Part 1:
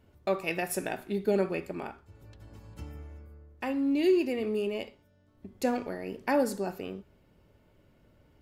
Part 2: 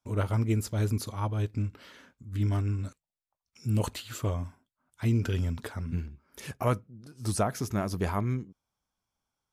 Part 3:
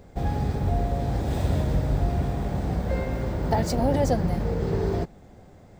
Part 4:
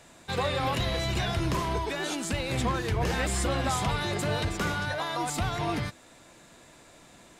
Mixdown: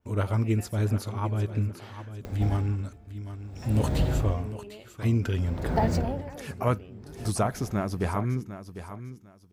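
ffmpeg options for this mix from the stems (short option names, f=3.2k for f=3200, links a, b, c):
-filter_complex "[0:a]alimiter=level_in=1.5dB:limit=-24dB:level=0:latency=1,volume=-1.5dB,volume=-11.5dB,asplit=2[a][b];[b]volume=-18.5dB[c];[1:a]volume=1.5dB,asplit=2[d][e];[e]volume=-12dB[f];[2:a]acompressor=mode=upward:threshold=-31dB:ratio=2.5,aeval=exprs='val(0)*pow(10,-36*(0.5-0.5*cos(2*PI*0.56*n/s))/20)':c=same,adelay=2250,volume=-0.5dB[g];[c][f]amix=inputs=2:normalize=0,aecho=0:1:750|1500|2250:1|0.21|0.0441[h];[a][d][g][h]amix=inputs=4:normalize=0,adynamicequalizer=threshold=0.002:dfrequency=3400:dqfactor=0.7:tfrequency=3400:tqfactor=0.7:attack=5:release=100:ratio=0.375:range=3:mode=cutabove:tftype=highshelf"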